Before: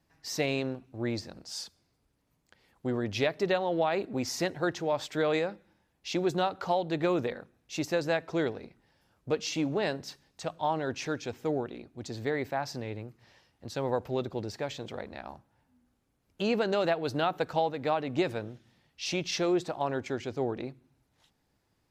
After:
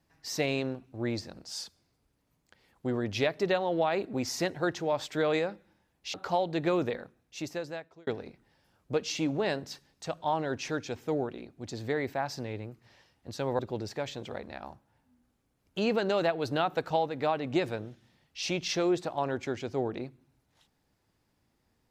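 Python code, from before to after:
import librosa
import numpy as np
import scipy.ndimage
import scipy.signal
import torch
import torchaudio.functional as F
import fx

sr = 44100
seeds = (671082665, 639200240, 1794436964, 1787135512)

y = fx.edit(x, sr, fx.cut(start_s=6.14, length_s=0.37),
    fx.fade_out_span(start_s=7.37, length_s=1.07),
    fx.cut(start_s=13.96, length_s=0.26), tone=tone)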